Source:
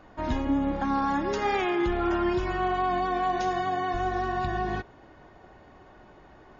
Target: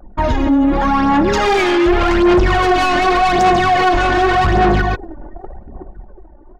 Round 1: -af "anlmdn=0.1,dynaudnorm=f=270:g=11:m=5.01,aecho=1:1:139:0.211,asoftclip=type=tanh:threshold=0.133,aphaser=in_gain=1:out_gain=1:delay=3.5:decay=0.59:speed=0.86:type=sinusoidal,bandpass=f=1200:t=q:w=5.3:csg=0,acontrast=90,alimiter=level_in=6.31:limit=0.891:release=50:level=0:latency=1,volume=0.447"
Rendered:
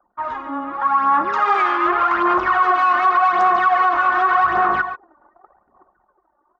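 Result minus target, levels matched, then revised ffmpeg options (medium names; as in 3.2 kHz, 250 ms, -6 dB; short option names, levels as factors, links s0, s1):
1 kHz band +3.0 dB
-af "anlmdn=0.1,dynaudnorm=f=270:g=11:m=5.01,aecho=1:1:139:0.211,asoftclip=type=tanh:threshold=0.133,aphaser=in_gain=1:out_gain=1:delay=3.5:decay=0.59:speed=0.86:type=sinusoidal,acontrast=90,alimiter=level_in=6.31:limit=0.891:release=50:level=0:latency=1,volume=0.447"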